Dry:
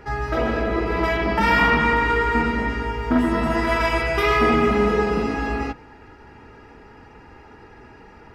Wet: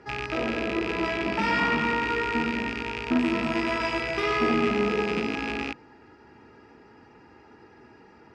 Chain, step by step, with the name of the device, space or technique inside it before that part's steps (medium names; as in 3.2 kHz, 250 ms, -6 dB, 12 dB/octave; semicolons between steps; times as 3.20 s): car door speaker with a rattle (rattle on loud lows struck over -32 dBFS, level -12 dBFS; cabinet simulation 99–8300 Hz, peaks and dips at 230 Hz +3 dB, 340 Hz +5 dB, 4.9 kHz +4 dB); trim -7.5 dB